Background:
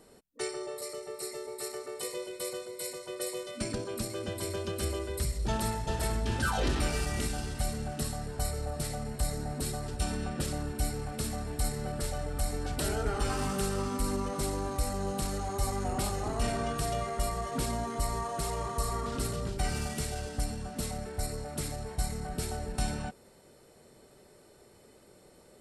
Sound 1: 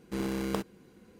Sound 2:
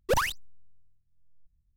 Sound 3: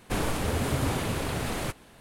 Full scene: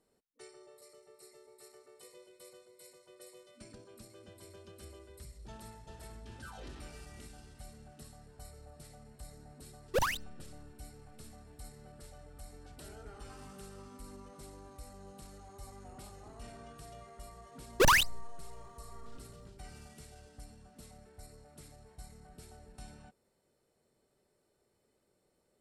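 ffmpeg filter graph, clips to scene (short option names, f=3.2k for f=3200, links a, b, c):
-filter_complex "[2:a]asplit=2[a][b];[0:a]volume=-18.5dB[c];[b]aeval=exprs='0.141*sin(PI/2*2*val(0)/0.141)':c=same[d];[a]atrim=end=1.76,asetpts=PTS-STARTPTS,volume=-5dB,afade=t=in:d=0.004:c=hsin,afade=t=out:st=1.756:d=0.004:c=hsin,adelay=9850[e];[d]atrim=end=1.76,asetpts=PTS-STARTPTS,volume=-3dB,afade=t=in:d=0.004:c=hsin,afade=t=out:st=1.756:d=0.004:c=hsin,adelay=17710[f];[c][e][f]amix=inputs=3:normalize=0"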